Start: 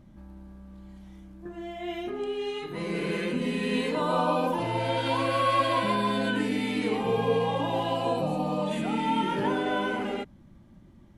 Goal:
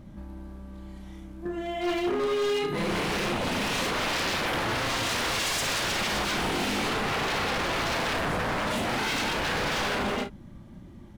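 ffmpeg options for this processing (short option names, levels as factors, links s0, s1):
-filter_complex "[0:a]aeval=exprs='0.0299*(abs(mod(val(0)/0.0299+3,4)-2)-1)':c=same,asplit=2[s0][s1];[s1]aecho=0:1:34|54:0.376|0.211[s2];[s0][s2]amix=inputs=2:normalize=0,volume=2.11"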